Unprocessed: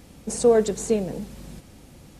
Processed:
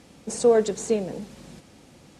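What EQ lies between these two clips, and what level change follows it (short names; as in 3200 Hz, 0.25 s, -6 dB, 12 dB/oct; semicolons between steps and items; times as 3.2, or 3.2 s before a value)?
HPF 200 Hz 6 dB/oct; LPF 8500 Hz 12 dB/oct; 0.0 dB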